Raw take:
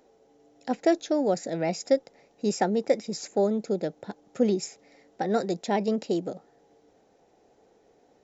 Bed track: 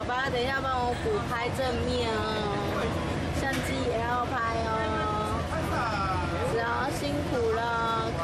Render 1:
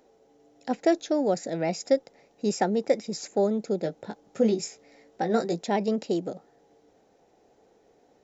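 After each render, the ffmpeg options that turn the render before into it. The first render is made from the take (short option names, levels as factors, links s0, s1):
-filter_complex "[0:a]asettb=1/sr,asplit=3[s0][s1][s2];[s0]atrim=end=3.834[s3];[s1]atrim=start=3.83:end=5.65,asetpts=PTS-STARTPTS,afade=t=in:d=0.004:c=qsin,afade=t=out:st=1.816:d=0.004:c=qsin,asplit=2[s4][s5];[s5]adelay=18,volume=0.501[s6];[s4][s6]amix=inputs=2:normalize=0,atrim=end_sample=80262[s7];[s2]atrim=start=5.646[s8];[s3][s7]acrossfade=d=0.004:c1=hsin:c2=qsin[s9];[s9][s8]acrossfade=d=0.004:c1=qsin:c2=hsin"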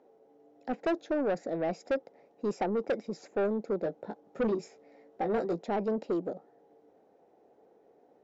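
-af "bandpass=f=500:t=q:w=0.6:csg=0,asoftclip=type=tanh:threshold=0.0631"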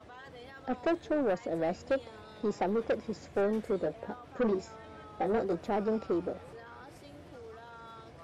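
-filter_complex "[1:a]volume=0.0841[s0];[0:a][s0]amix=inputs=2:normalize=0"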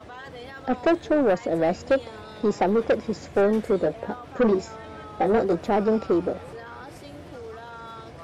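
-af "volume=2.82"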